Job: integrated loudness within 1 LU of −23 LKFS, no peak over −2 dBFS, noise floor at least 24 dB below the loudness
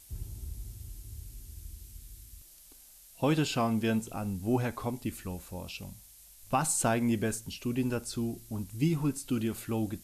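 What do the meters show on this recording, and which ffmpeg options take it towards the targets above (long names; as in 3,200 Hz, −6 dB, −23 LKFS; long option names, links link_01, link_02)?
background noise floor −55 dBFS; target noise floor −56 dBFS; integrated loudness −32.0 LKFS; sample peak −16.0 dBFS; target loudness −23.0 LKFS
→ -af "afftdn=noise_reduction=6:noise_floor=-55"
-af "volume=9dB"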